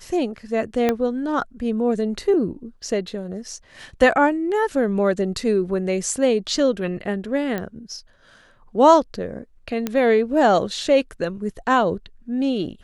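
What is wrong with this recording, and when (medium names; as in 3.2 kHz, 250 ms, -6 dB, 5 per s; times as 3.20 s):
0.89 s: pop -7 dBFS
7.58 s: pop -14 dBFS
9.87 s: pop -10 dBFS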